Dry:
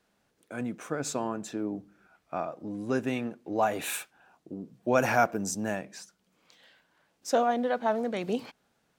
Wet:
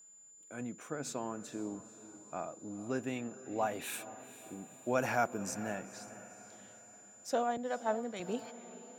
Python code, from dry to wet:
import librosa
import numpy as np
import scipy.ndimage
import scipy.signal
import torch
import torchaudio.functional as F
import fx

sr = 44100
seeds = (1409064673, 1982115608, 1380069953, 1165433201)

y = fx.echo_diffused(x, sr, ms=482, feedback_pct=50, wet_db=-15)
y = y + 10.0 ** (-48.0 / 20.0) * np.sin(2.0 * np.pi * 7100.0 * np.arange(len(y)) / sr)
y = fx.band_widen(y, sr, depth_pct=100, at=(7.57, 8.2))
y = y * librosa.db_to_amplitude(-7.5)